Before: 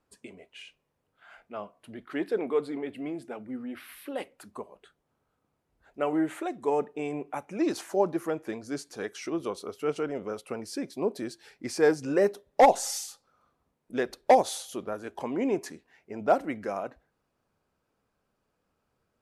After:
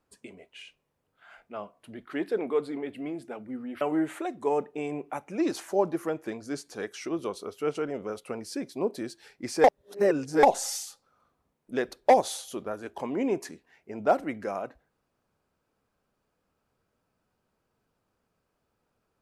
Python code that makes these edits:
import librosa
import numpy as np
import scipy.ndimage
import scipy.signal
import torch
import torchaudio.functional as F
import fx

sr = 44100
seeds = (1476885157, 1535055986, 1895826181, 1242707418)

y = fx.edit(x, sr, fx.cut(start_s=3.81, length_s=2.21),
    fx.reverse_span(start_s=11.85, length_s=0.79), tone=tone)